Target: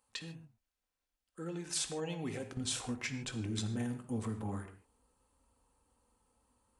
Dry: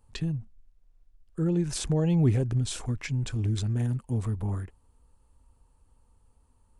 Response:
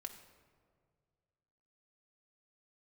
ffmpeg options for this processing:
-filter_complex "[0:a]asetnsamples=nb_out_samples=441:pad=0,asendcmd='2.57 highpass f 310',highpass=frequency=1200:poles=1[link_01];[1:a]atrim=start_sample=2205,afade=type=out:start_time=0.21:duration=0.01,atrim=end_sample=9702[link_02];[link_01][link_02]afir=irnorm=-1:irlink=0,volume=3.5dB"

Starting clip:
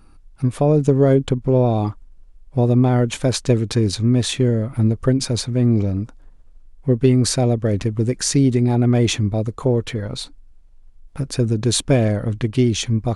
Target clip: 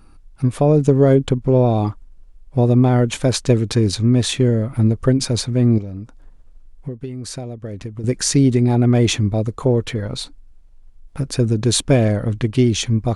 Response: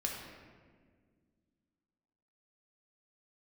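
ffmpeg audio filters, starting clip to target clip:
-filter_complex "[0:a]asettb=1/sr,asplit=3[link_01][link_02][link_03];[link_01]atrim=end=5.784[link_04];[link_02]atrim=start=5.78:end=8.04,asetpts=PTS-STARTPTS,afade=type=in:duration=0.004:curve=qsin,afade=type=out:start_time=2.256:duration=0.004:curve=qsin,acompressor=threshold=-27dB:ratio=16[link_05];[link_03]atrim=start=8.036[link_06];[link_04][link_05]acrossfade=duration=0.004:curve1=hsin:curve2=qsin[link_07];[link_07][link_06]acrossfade=duration=0.004:curve1=qsin:curve2=hsin,volume=1.5dB"

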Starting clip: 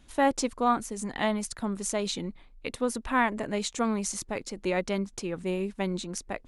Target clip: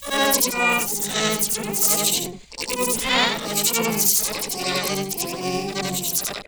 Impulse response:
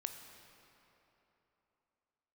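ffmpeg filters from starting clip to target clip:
-filter_complex "[0:a]afftfilt=real='re':imag='-im':win_size=8192:overlap=0.75,asplit=3[link_01][link_02][link_03];[link_02]asetrate=33038,aresample=44100,atempo=1.33484,volume=-6dB[link_04];[link_03]asetrate=88200,aresample=44100,atempo=0.5,volume=-1dB[link_05];[link_01][link_04][link_05]amix=inputs=3:normalize=0,aexciter=amount=3.4:drive=4.5:freq=2300,volume=5dB"

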